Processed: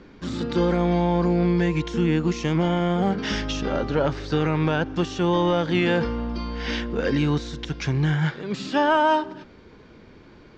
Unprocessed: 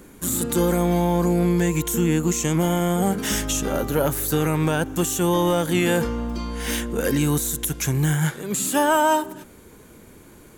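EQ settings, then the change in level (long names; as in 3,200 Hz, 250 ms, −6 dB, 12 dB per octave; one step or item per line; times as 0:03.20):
elliptic low-pass filter 5,100 Hz, stop band 60 dB
0.0 dB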